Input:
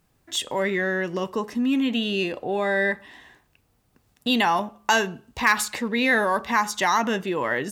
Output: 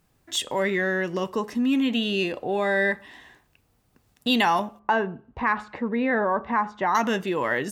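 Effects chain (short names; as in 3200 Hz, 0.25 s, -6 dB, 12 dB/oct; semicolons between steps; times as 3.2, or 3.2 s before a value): 4.79–6.95 LPF 1300 Hz 12 dB/oct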